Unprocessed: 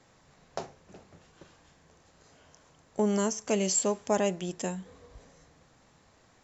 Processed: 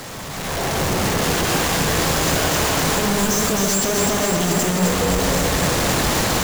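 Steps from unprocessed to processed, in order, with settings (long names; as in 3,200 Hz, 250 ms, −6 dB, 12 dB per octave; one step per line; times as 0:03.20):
sign of each sample alone
automatic gain control gain up to 12 dB
on a send: delay that swaps between a low-pass and a high-pass 130 ms, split 1,200 Hz, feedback 86%, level −2.5 dB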